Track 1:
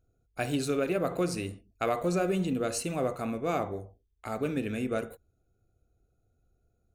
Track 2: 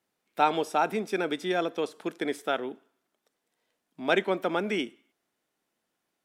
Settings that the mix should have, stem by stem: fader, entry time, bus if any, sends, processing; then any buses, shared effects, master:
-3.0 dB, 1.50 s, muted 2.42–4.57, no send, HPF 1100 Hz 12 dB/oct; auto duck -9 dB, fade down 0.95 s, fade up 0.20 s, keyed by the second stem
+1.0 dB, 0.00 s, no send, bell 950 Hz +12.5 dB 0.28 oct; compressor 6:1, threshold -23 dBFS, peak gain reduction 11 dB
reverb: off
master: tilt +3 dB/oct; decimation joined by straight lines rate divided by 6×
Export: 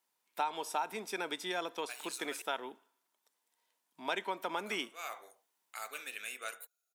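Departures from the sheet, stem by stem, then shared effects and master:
stem 2 +1.0 dB -> -7.0 dB; master: missing decimation joined by straight lines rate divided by 6×

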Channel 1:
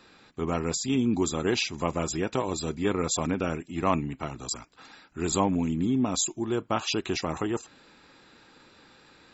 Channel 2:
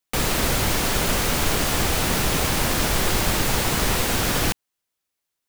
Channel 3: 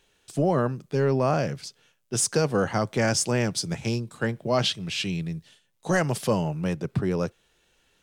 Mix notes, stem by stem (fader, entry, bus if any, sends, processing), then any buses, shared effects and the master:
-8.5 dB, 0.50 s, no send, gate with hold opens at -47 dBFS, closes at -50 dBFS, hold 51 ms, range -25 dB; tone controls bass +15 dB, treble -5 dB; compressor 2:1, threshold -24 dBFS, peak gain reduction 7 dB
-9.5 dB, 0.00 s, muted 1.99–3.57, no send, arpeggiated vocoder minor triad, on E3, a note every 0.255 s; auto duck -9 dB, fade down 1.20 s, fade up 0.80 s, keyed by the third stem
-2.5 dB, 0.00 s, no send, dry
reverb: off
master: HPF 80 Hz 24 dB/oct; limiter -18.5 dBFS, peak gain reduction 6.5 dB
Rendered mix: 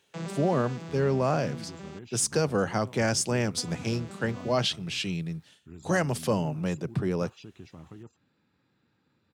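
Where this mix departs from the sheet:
stem 1 -8.5 dB -> -20.0 dB; master: missing limiter -18.5 dBFS, peak gain reduction 6.5 dB

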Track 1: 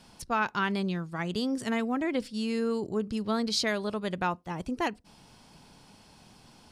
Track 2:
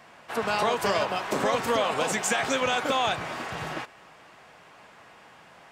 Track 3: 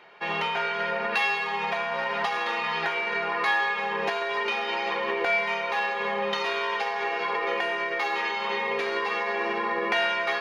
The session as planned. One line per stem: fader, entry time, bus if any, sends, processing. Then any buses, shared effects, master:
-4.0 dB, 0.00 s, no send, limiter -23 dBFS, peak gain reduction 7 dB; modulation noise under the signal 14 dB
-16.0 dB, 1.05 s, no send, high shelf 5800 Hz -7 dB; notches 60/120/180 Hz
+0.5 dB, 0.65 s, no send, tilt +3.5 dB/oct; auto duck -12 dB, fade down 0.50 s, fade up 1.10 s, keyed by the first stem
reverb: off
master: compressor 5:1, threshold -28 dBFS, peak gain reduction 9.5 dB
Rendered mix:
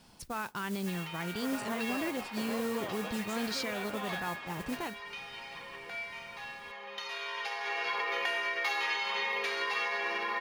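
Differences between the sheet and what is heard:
stem 3 +0.5 dB -> -6.5 dB; master: missing compressor 5:1, threshold -28 dBFS, peak gain reduction 9.5 dB

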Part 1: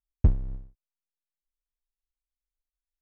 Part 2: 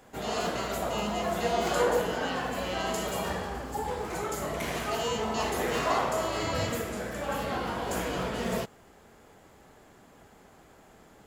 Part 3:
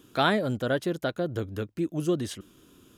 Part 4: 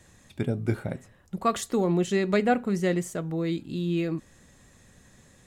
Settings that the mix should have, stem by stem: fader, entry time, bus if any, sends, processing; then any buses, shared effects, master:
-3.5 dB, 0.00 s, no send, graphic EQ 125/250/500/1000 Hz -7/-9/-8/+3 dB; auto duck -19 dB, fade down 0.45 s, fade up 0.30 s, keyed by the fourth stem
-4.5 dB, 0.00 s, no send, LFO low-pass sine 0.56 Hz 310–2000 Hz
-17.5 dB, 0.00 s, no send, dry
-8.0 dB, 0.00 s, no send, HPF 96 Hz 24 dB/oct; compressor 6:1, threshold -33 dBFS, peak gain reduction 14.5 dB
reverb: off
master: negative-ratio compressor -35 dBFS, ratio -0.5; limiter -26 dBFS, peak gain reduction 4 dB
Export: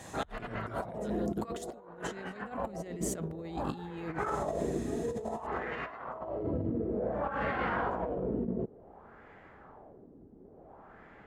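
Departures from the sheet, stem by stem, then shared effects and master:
stem 1 -3.5 dB -> +7.0 dB; stem 4 -8.0 dB -> +4.0 dB; master: missing limiter -26 dBFS, peak gain reduction 4 dB

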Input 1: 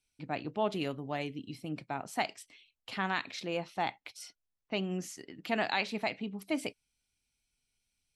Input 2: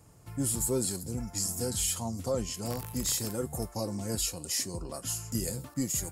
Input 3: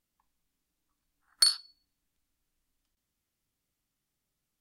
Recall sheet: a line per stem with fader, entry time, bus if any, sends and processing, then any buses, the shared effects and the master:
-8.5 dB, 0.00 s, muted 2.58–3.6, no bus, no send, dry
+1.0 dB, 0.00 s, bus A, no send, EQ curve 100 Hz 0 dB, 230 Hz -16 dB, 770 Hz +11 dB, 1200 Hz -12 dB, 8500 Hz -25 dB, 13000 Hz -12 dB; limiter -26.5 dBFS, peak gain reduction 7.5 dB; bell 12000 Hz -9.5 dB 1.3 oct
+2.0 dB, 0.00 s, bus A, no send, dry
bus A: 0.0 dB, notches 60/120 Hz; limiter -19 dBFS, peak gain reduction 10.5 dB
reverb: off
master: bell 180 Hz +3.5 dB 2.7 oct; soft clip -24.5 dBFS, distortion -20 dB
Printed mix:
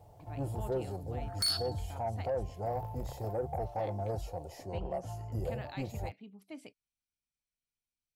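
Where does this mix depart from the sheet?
stem 1 -8.5 dB -> -16.0 dB; stem 3 +2.0 dB -> +8.5 dB

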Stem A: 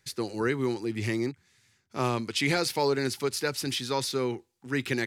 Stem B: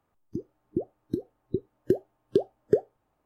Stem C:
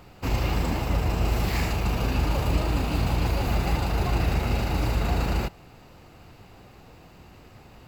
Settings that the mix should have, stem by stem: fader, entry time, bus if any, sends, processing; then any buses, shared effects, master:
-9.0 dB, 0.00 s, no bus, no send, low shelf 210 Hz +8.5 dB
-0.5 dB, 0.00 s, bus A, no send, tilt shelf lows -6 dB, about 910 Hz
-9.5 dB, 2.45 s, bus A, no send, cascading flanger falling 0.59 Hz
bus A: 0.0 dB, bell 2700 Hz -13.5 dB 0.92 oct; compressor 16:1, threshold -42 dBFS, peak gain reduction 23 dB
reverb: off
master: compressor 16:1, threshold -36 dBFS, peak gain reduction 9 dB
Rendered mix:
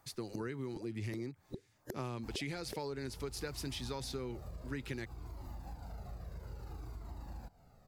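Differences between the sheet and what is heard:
stem B -0.5 dB -> +8.0 dB; stem C: entry 2.45 s -> 2.00 s

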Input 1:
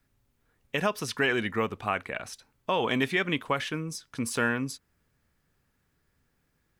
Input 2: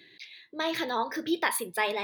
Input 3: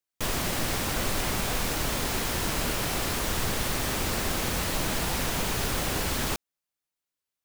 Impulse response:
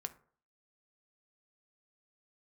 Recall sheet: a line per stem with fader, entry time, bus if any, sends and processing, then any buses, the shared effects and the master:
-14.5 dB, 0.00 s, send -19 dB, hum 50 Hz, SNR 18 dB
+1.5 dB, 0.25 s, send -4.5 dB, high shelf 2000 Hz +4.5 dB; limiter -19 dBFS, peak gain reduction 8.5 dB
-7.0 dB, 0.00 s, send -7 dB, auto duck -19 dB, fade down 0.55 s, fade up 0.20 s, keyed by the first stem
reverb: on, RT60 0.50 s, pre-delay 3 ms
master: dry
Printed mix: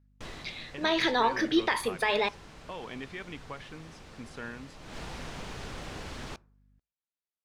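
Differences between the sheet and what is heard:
stem 3 -7.0 dB -> -13.0 dB; master: extra air absorption 87 m

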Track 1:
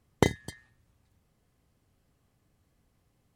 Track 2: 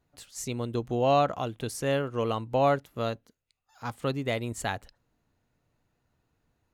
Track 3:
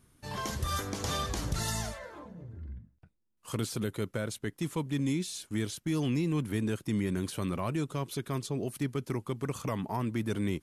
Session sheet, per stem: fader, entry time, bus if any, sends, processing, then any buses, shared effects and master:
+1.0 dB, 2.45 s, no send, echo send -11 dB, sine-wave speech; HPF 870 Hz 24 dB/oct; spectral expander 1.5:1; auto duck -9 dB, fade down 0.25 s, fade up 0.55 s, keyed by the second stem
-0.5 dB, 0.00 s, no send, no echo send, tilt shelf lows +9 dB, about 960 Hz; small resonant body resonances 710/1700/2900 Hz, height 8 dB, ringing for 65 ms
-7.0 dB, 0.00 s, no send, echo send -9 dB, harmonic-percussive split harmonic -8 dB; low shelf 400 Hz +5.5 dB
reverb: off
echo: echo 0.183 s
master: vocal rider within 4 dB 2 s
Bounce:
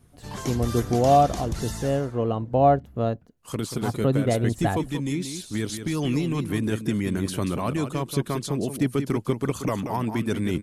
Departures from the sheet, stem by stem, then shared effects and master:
stem 1: muted; stem 3 -7.0 dB -> +3.0 dB

